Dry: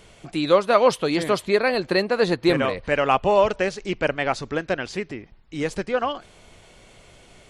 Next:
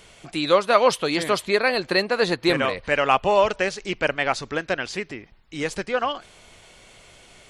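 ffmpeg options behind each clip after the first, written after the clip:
-af "tiltshelf=f=770:g=-3.5"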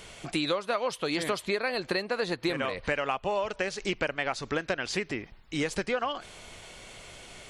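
-af "acompressor=threshold=-28dB:ratio=12,volume=2.5dB"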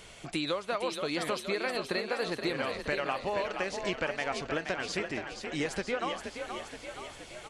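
-filter_complex "[0:a]asplit=9[a][b][c][d][e][f][g][h][i];[b]adelay=474,afreqshift=37,volume=-7dB[j];[c]adelay=948,afreqshift=74,volume=-11.3dB[k];[d]adelay=1422,afreqshift=111,volume=-15.6dB[l];[e]adelay=1896,afreqshift=148,volume=-19.9dB[m];[f]adelay=2370,afreqshift=185,volume=-24.2dB[n];[g]adelay=2844,afreqshift=222,volume=-28.5dB[o];[h]adelay=3318,afreqshift=259,volume=-32.8dB[p];[i]adelay=3792,afreqshift=296,volume=-37.1dB[q];[a][j][k][l][m][n][o][p][q]amix=inputs=9:normalize=0,volume=-3.5dB"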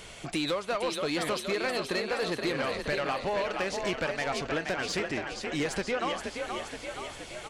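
-af "asoftclip=type=tanh:threshold=-27.5dB,volume=4.5dB"

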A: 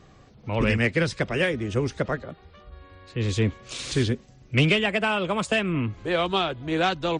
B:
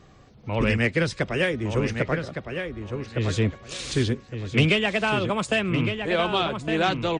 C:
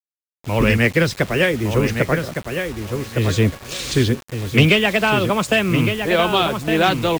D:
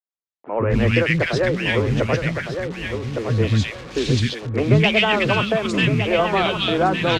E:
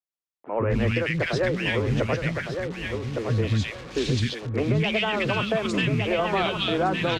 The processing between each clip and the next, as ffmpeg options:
-filter_complex "[0:a]asplit=2[a][b];[b]adelay=1161,lowpass=f=3.4k:p=1,volume=-6.5dB,asplit=2[c][d];[d]adelay=1161,lowpass=f=3.4k:p=1,volume=0.22,asplit=2[e][f];[f]adelay=1161,lowpass=f=3.4k:p=1,volume=0.22[g];[a][c][e][g]amix=inputs=4:normalize=0"
-af "acrusher=bits=6:mix=0:aa=0.000001,volume=6.5dB"
-filter_complex "[0:a]lowpass=5k,acrossover=split=280|1500[a][b][c];[a]adelay=130[d];[c]adelay=260[e];[d][b][e]amix=inputs=3:normalize=0"
-af "alimiter=limit=-10.5dB:level=0:latency=1:release=101,volume=-3.5dB"

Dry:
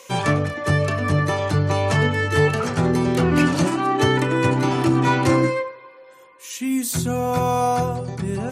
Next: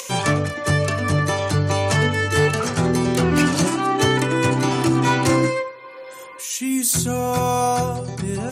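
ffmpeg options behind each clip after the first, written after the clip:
-af "equalizer=f=8.7k:t=o:w=2.1:g=8,acompressor=mode=upward:threshold=-27dB:ratio=2.5,volume=10dB,asoftclip=hard,volume=-10dB"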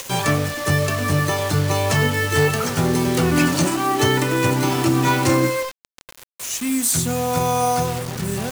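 -af "acrusher=bits=4:mix=0:aa=0.000001"

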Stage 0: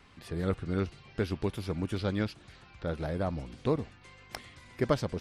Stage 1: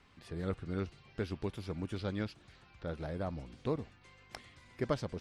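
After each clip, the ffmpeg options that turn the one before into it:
-af "lowpass=9.9k,volume=-6dB"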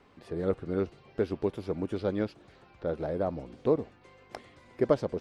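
-af "equalizer=f=470:t=o:w=2.5:g=13.5,volume=-2.5dB"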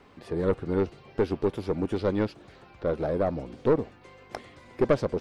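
-af "aeval=exprs='(tanh(10*val(0)+0.3)-tanh(0.3))/10':c=same,volume=6dB"

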